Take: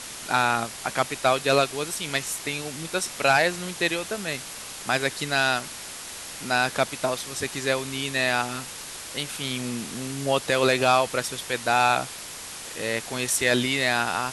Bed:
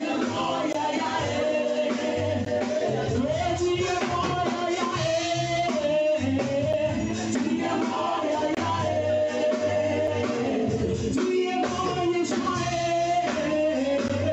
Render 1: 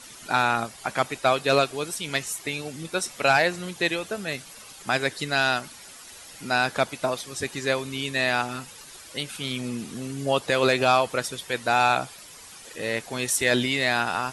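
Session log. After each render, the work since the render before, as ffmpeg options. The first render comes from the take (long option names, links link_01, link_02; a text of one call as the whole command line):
ffmpeg -i in.wav -af "afftdn=noise_reduction=11:noise_floor=-38" out.wav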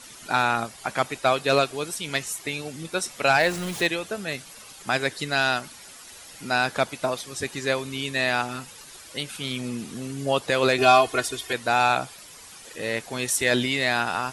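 ffmpeg -i in.wav -filter_complex "[0:a]asettb=1/sr,asplit=3[link_01][link_02][link_03];[link_01]atrim=end=3.404[link_04];[link_02]atrim=start=3.4:end=3.87,asetpts=PTS-STARTPTS,afade=type=in:duration=0.004:curve=qsin,afade=type=out:start_time=0.466:duration=0.004:curve=qsin,aeval=exprs='val(0)+0.5*0.0266*sgn(val(0))':channel_layout=same[link_05];[link_03]atrim=start=3.866[link_06];[link_04][link_05]acrossfade=duration=0.004:curve1=hsin:curve2=qsin[link_07];[link_07][link_06]acrossfade=duration=0.004:curve1=qsin:curve2=hsin,asettb=1/sr,asplit=3[link_08][link_09][link_10];[link_08]atrim=end=10.784[link_11];[link_09]atrim=start=10.78:end=11.53,asetpts=PTS-STARTPTS,afade=type=in:duration=0.004:curve=qsin,afade=type=out:start_time=0.746:duration=0.004:curve=qsin,aecho=1:1:2.8:0.99,atrim=end_sample=33075[link_12];[link_10]atrim=start=11.526[link_13];[link_11][link_12]acrossfade=duration=0.004:curve1=hsin:curve2=qsin[link_14];[link_14][link_13]acrossfade=duration=0.004:curve1=qsin:curve2=hsin" out.wav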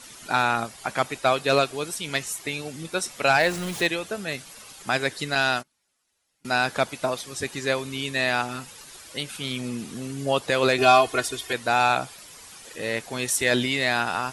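ffmpeg -i in.wav -filter_complex "[0:a]asettb=1/sr,asplit=3[link_01][link_02][link_03];[link_01]atrim=end=5.354[link_04];[link_02]atrim=start=5.35:end=6.45,asetpts=PTS-STARTPTS,afade=type=in:duration=0.004:curve=qsin,afade=type=out:start_time=1.096:duration=0.004:curve=qsin,agate=range=-30dB:threshold=-34dB:ratio=16:release=100:detection=peak[link_05];[link_03]atrim=start=6.446[link_06];[link_04][link_05]acrossfade=duration=0.004:curve1=hsin:curve2=qsin[link_07];[link_07][link_06]acrossfade=duration=0.004:curve1=qsin:curve2=hsin" out.wav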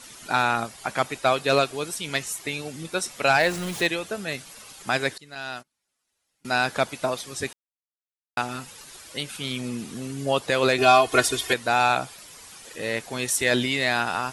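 ffmpeg -i in.wav -filter_complex "[0:a]asplit=6[link_01][link_02][link_03][link_04][link_05][link_06];[link_01]atrim=end=5.18,asetpts=PTS-STARTPTS,afade=type=out:start_time=5.176:duration=0.004:curve=hsin:silence=0.0794328[link_07];[link_02]atrim=start=5.18:end=7.53,asetpts=PTS-STARTPTS,afade=type=in:duration=1.41:silence=0.0794328,afade=type=out:start_time=2.346:duration=0.004:curve=hsin[link_08];[link_03]atrim=start=7.53:end=8.37,asetpts=PTS-STARTPTS,volume=0[link_09];[link_04]atrim=start=8.37:end=11.122,asetpts=PTS-STARTPTS,afade=type=in:duration=0.004:curve=hsin[link_10];[link_05]atrim=start=11.118:end=11.542,asetpts=PTS-STARTPTS,volume=5.5dB[link_11];[link_06]atrim=start=11.538[link_12];[link_07][link_08][link_09][link_10]concat=n=4:v=0:a=1[link_13];[link_13][link_11]acrossfade=duration=0.004:curve1=hsin:curve2=hsin[link_14];[link_14][link_12]acrossfade=duration=0.004:curve1=hsin:curve2=hsin" out.wav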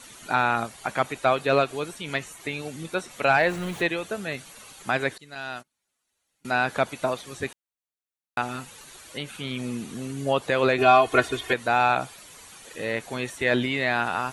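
ffmpeg -i in.wav -filter_complex "[0:a]bandreject=frequency=5100:width=8.4,acrossover=split=3100[link_01][link_02];[link_02]acompressor=threshold=-43dB:ratio=4:attack=1:release=60[link_03];[link_01][link_03]amix=inputs=2:normalize=0" out.wav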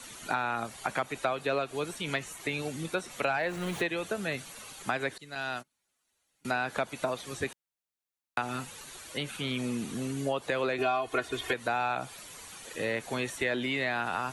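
ffmpeg -i in.wav -filter_complex "[0:a]acrossover=split=210|580|5300[link_01][link_02][link_03][link_04];[link_01]alimiter=level_in=11dB:limit=-24dB:level=0:latency=1,volume=-11dB[link_05];[link_05][link_02][link_03][link_04]amix=inputs=4:normalize=0,acompressor=threshold=-27dB:ratio=5" out.wav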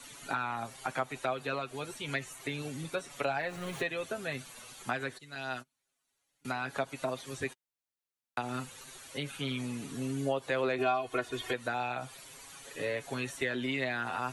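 ffmpeg -i in.wav -af "flanger=delay=7:depth=1.2:regen=18:speed=0.31:shape=triangular" out.wav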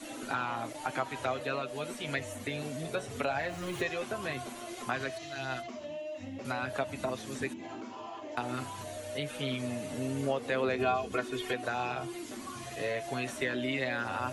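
ffmpeg -i in.wav -i bed.wav -filter_complex "[1:a]volume=-17dB[link_01];[0:a][link_01]amix=inputs=2:normalize=0" out.wav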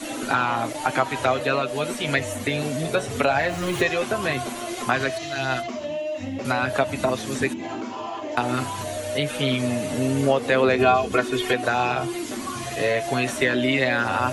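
ffmpeg -i in.wav -af "volume=11.5dB" out.wav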